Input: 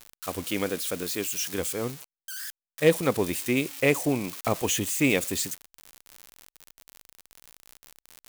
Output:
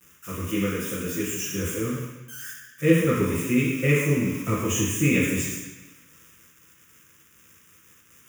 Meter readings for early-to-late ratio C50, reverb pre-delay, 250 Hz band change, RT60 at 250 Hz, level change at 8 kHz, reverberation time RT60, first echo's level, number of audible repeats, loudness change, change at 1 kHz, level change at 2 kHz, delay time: -1.0 dB, 3 ms, +5.0 dB, 1.1 s, 0.0 dB, 1.1 s, none, none, +2.5 dB, -1.0 dB, +2.0 dB, none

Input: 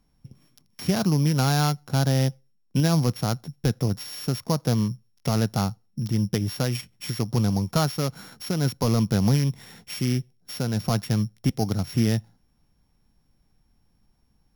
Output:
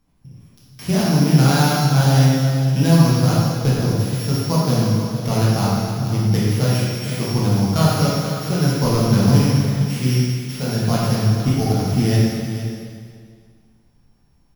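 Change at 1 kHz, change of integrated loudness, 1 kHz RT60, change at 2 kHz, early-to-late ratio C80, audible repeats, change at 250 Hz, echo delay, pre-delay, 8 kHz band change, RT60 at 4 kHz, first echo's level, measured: +7.5 dB, +7.5 dB, 2.1 s, +7.5 dB, -1.0 dB, 1, +7.0 dB, 0.463 s, 5 ms, +6.5 dB, 2.0 s, -11.5 dB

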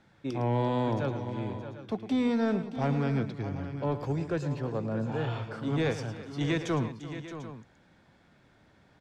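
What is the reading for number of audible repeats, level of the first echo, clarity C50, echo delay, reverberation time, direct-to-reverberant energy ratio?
4, -12.0 dB, none, 0.109 s, none, none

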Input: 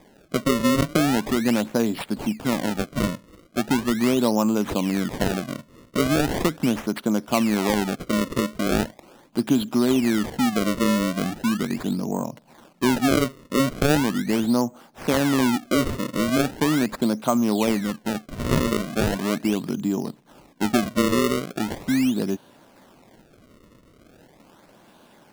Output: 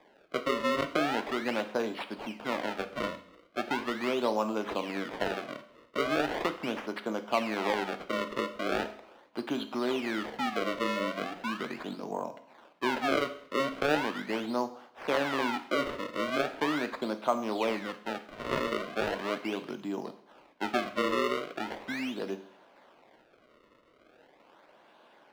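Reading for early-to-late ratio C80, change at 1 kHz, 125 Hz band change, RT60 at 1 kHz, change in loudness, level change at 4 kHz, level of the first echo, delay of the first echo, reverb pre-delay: 16.5 dB, -4.0 dB, -19.0 dB, 0.60 s, -9.0 dB, -7.0 dB, none, none, 10 ms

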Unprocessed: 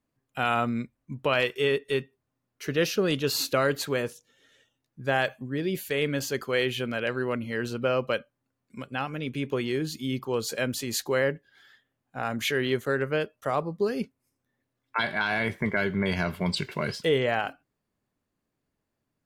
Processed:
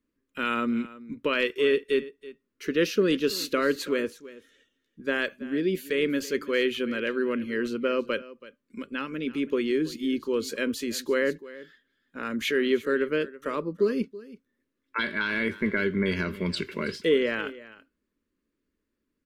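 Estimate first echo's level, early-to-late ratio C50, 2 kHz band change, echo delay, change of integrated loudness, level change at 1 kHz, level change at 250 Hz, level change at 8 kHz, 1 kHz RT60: -18.0 dB, none, 0.0 dB, 0.328 s, +0.5 dB, -4.5 dB, +3.0 dB, -4.0 dB, none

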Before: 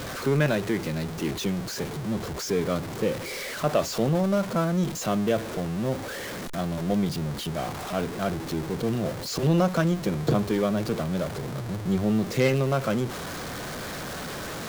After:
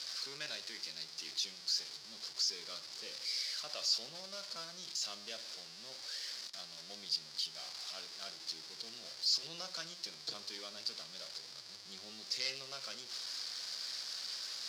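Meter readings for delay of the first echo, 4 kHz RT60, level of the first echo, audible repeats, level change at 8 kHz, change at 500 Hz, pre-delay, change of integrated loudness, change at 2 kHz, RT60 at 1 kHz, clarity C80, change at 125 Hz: none, 0.30 s, none, none, -5.5 dB, -28.0 dB, 10 ms, -12.0 dB, -15.5 dB, 0.45 s, 20.5 dB, -38.5 dB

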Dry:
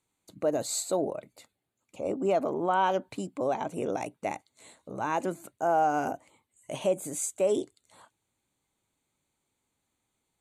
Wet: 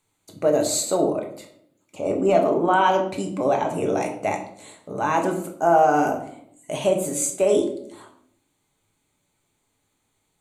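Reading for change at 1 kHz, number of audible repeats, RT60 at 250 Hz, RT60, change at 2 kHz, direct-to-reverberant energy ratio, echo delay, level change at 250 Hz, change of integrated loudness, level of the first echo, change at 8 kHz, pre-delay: +7.5 dB, none, 1.0 s, 0.65 s, +9.0 dB, 2.0 dB, none, +9.0 dB, +8.0 dB, none, +8.0 dB, 5 ms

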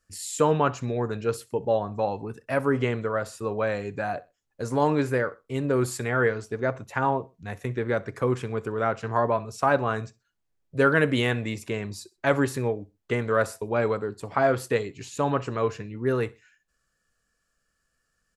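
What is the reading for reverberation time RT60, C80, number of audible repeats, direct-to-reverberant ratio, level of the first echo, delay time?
none, none, 2, none, -23.0 dB, 63 ms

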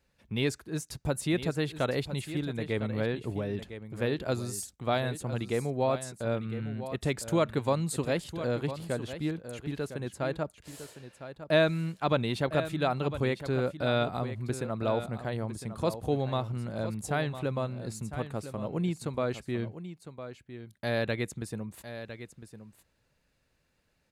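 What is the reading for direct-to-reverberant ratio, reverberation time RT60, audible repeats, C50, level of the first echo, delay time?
none, none, 1, none, -11.5 dB, 1.006 s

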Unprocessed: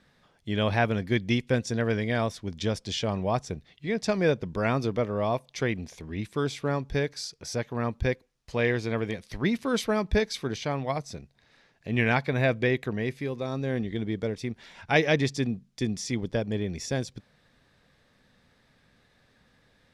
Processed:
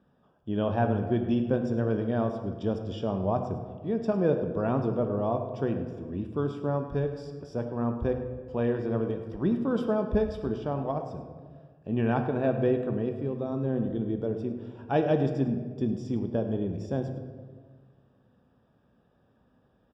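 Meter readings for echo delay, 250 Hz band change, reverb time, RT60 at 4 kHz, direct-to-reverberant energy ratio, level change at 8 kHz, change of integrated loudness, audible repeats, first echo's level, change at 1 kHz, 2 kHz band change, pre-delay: 0.105 s, +1.5 dB, 1.6 s, 1.0 s, 5.5 dB, under -20 dB, -1.0 dB, 1, -15.0 dB, -1.5 dB, -12.5 dB, 3 ms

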